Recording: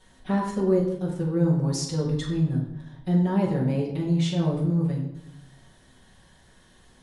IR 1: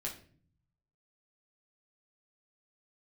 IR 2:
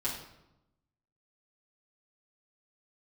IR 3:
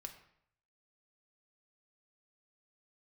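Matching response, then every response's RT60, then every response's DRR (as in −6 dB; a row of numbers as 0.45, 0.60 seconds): 2; 0.45, 0.90, 0.70 seconds; −2.5, −7.5, 4.0 decibels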